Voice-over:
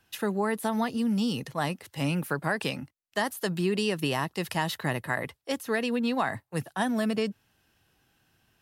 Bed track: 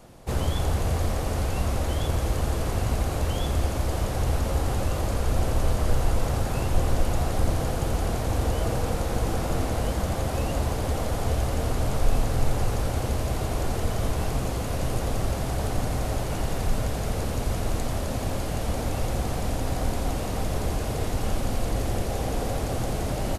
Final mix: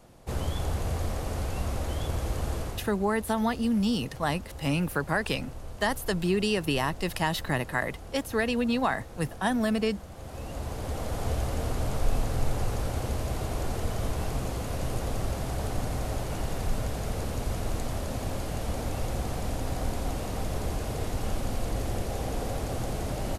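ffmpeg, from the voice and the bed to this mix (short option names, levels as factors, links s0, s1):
-filter_complex "[0:a]adelay=2650,volume=1.12[s0];[1:a]volume=2.66,afade=t=out:st=2.57:d=0.34:silence=0.237137,afade=t=in:st=10.12:d=1.15:silence=0.211349[s1];[s0][s1]amix=inputs=2:normalize=0"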